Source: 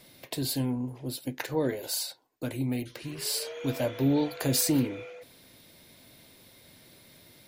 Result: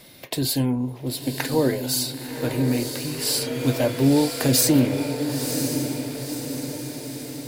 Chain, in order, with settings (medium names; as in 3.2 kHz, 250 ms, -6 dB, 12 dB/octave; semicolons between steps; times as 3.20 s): echo that smears into a reverb 1003 ms, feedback 55%, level -6.5 dB; trim +7 dB